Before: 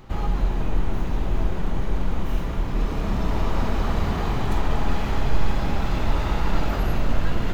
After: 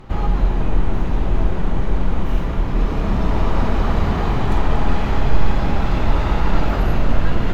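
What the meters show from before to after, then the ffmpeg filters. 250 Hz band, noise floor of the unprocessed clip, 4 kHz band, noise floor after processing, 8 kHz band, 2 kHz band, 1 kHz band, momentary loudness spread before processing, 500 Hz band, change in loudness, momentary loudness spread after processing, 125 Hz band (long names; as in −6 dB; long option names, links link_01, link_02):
+5.5 dB, −26 dBFS, +2.5 dB, −21 dBFS, can't be measured, +4.0 dB, +5.0 dB, 3 LU, +5.5 dB, +5.0 dB, 3 LU, +5.5 dB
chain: -af "aemphasis=mode=reproduction:type=cd,volume=5dB"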